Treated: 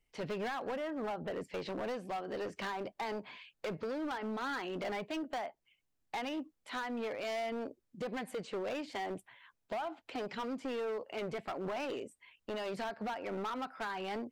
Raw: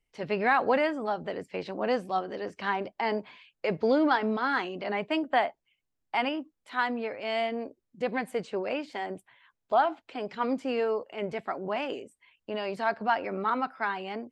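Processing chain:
0:00.76–0:01.39: low-pass filter 1,800 Hz → 3,000 Hz
downward compressor 20 to 1, threshold −32 dBFS, peak gain reduction 14.5 dB
hard clipping −35 dBFS, distortion −10 dB
level +1 dB

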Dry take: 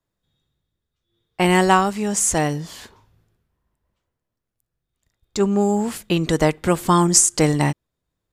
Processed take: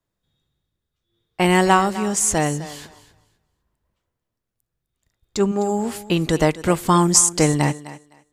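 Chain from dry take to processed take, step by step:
0:05.51–0:06.07: notch comb filter 190 Hz
feedback echo with a high-pass in the loop 256 ms, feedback 19%, high-pass 230 Hz, level −15 dB

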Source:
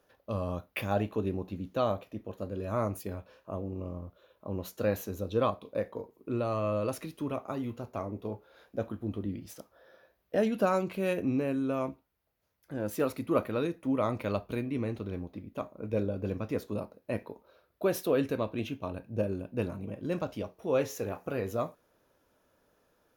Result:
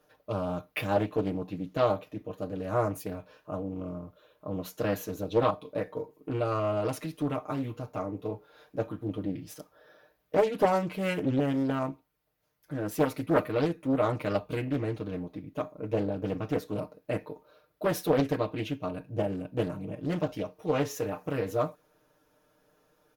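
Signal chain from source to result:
comb filter 6.6 ms, depth 92%
highs frequency-modulated by the lows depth 0.57 ms

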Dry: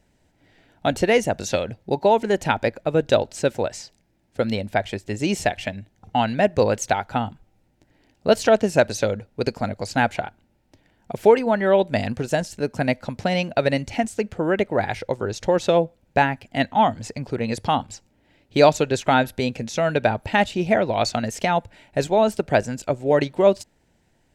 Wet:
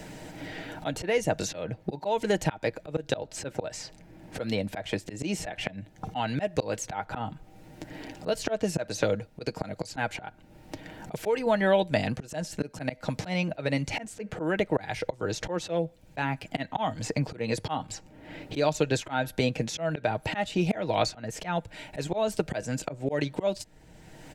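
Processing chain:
comb filter 6.4 ms, depth 42%
volume swells 370 ms
multiband upward and downward compressor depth 70%
level +1 dB

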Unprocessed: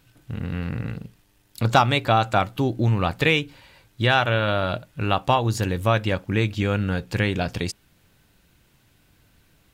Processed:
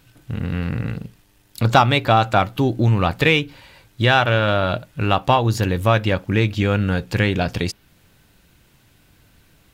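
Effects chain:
dynamic equaliser 8,300 Hz, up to −6 dB, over −47 dBFS, Q 1.4
in parallel at −10.5 dB: soft clipping −19.5 dBFS, distortion −9 dB
on the sum: level +2.5 dB

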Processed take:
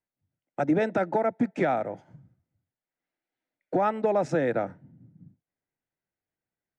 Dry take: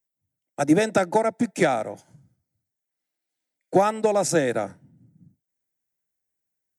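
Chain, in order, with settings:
low-pass filter 2,200 Hz 12 dB per octave
in parallel at −2 dB: downward compressor, threshold −34 dBFS, peak gain reduction 19.5 dB
on the sum: brickwall limiter −12 dBFS, peak gain reduction 7 dB
level −3 dB

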